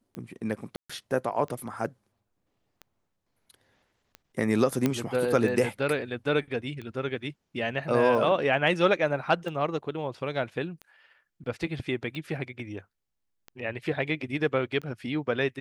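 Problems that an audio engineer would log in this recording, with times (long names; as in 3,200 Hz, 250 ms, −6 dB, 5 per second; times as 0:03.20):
scratch tick 45 rpm −26 dBFS
0:00.76–0:00.90: drop-out 135 ms
0:04.86: click −11 dBFS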